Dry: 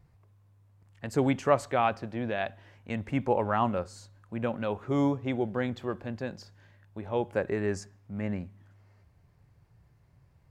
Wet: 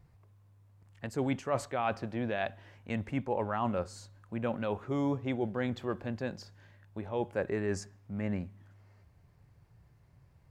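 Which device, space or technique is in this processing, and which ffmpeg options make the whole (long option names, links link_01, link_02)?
compression on the reversed sound: -af "areverse,acompressor=threshold=-28dB:ratio=5,areverse"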